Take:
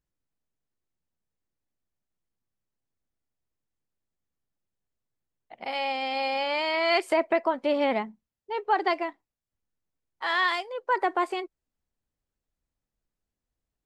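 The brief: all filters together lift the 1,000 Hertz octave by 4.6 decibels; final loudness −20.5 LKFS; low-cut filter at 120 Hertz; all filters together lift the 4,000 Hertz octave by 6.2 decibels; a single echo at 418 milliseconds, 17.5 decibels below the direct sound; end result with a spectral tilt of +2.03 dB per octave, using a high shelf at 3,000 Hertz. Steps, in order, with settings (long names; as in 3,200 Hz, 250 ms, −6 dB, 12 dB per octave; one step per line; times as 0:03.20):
high-pass filter 120 Hz
parametric band 1,000 Hz +5 dB
high-shelf EQ 3,000 Hz +5 dB
parametric band 4,000 Hz +4 dB
single-tap delay 418 ms −17.5 dB
level +3 dB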